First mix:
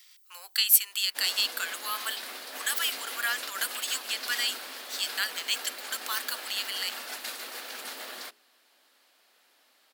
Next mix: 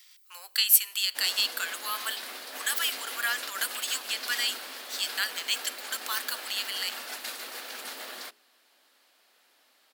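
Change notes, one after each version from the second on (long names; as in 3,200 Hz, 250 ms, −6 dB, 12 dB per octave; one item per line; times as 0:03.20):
reverb: on, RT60 1.5 s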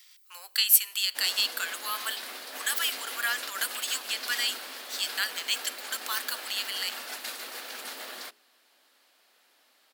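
nothing changed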